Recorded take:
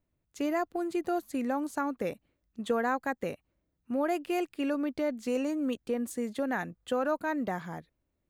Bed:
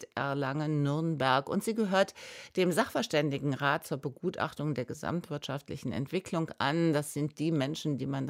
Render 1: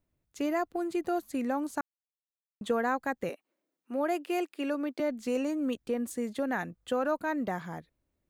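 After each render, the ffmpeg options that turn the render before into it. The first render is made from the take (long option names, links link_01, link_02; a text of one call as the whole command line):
ffmpeg -i in.wav -filter_complex "[0:a]asettb=1/sr,asplit=3[link_01][link_02][link_03];[link_01]atrim=end=3.294[link_04];[link_02]atrim=start=3.29:end=5,asetpts=PTS-STARTPTS,afade=type=in:duration=0.004:curve=qsin,afade=type=out:start_time=1.706:duration=0.004:curve=qsin,highpass=frequency=270:width=0.5412,highpass=frequency=270:width=1.3066[link_05];[link_03]atrim=start=4.996[link_06];[link_04][link_05]acrossfade=duration=0.004:curve1=hsin:curve2=qsin[link_07];[link_07][link_06]acrossfade=duration=0.004:curve1=qsin:curve2=hsin,asplit=3[link_08][link_09][link_10];[link_08]atrim=end=1.81,asetpts=PTS-STARTPTS,afade=type=out:start_time=1.806:duration=0.004:curve=hsin[link_11];[link_09]atrim=start=1.81:end=2.61,asetpts=PTS-STARTPTS,volume=0[link_12];[link_10]atrim=start=2.61,asetpts=PTS-STARTPTS,afade=type=in:duration=0.004:curve=hsin[link_13];[link_11][link_12][link_13]concat=n=3:v=0:a=1" out.wav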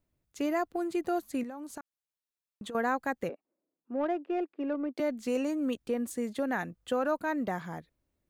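ffmpeg -i in.wav -filter_complex "[0:a]asettb=1/sr,asplit=3[link_01][link_02][link_03];[link_01]atrim=end=1.434[link_04];[link_02]atrim=start=1.43:end=2.75,asetpts=PTS-STARTPTS,afade=type=in:duration=0.004:curve=qsin,afade=type=out:start_time=1.316:duration=0.004:curve=qsin,acompressor=threshold=-37dB:ratio=16:attack=3.2:release=140:knee=1:detection=peak[link_05];[link_03]atrim=start=2.746[link_06];[link_04][link_05]acrossfade=duration=0.004:curve1=hsin:curve2=qsin[link_07];[link_07][link_06]acrossfade=duration=0.004:curve1=qsin:curve2=hsin,asplit=3[link_08][link_09][link_10];[link_08]afade=type=out:start_time=3.27:duration=0.02[link_11];[link_09]adynamicsmooth=sensitivity=1:basefreq=1000,afade=type=in:start_time=3.27:duration=0.02,afade=type=out:start_time=4.96:duration=0.02[link_12];[link_10]afade=type=in:start_time=4.96:duration=0.02[link_13];[link_11][link_12][link_13]amix=inputs=3:normalize=0" out.wav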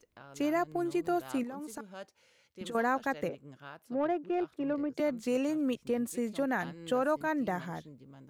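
ffmpeg -i in.wav -i bed.wav -filter_complex "[1:a]volume=-19.5dB[link_01];[0:a][link_01]amix=inputs=2:normalize=0" out.wav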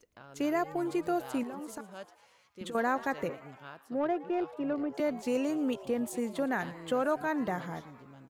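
ffmpeg -i in.wav -filter_complex "[0:a]asplit=7[link_01][link_02][link_03][link_04][link_05][link_06][link_07];[link_02]adelay=115,afreqshift=130,volume=-18.5dB[link_08];[link_03]adelay=230,afreqshift=260,volume=-22.4dB[link_09];[link_04]adelay=345,afreqshift=390,volume=-26.3dB[link_10];[link_05]adelay=460,afreqshift=520,volume=-30.1dB[link_11];[link_06]adelay=575,afreqshift=650,volume=-34dB[link_12];[link_07]adelay=690,afreqshift=780,volume=-37.9dB[link_13];[link_01][link_08][link_09][link_10][link_11][link_12][link_13]amix=inputs=7:normalize=0" out.wav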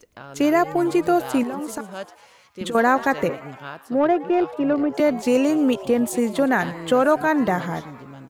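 ffmpeg -i in.wav -af "volume=12dB" out.wav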